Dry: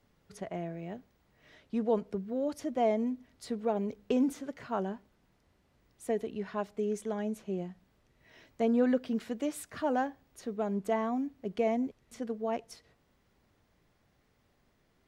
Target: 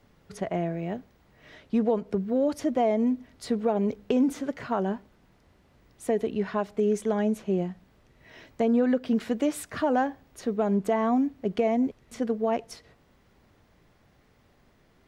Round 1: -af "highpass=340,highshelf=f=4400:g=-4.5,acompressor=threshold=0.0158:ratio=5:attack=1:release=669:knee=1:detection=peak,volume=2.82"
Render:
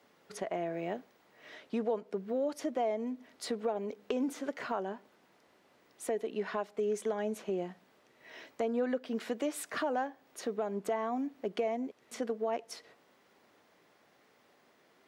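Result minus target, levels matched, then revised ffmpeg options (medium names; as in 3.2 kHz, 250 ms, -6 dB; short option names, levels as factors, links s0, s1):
compression: peak gain reduction +6.5 dB; 250 Hz band -3.5 dB
-af "highshelf=f=4400:g=-4.5,acompressor=threshold=0.0501:ratio=5:attack=1:release=669:knee=1:detection=peak,volume=2.82"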